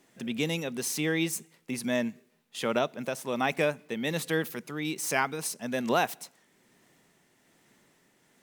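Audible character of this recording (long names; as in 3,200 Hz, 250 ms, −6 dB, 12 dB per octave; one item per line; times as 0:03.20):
tremolo triangle 1.2 Hz, depth 35%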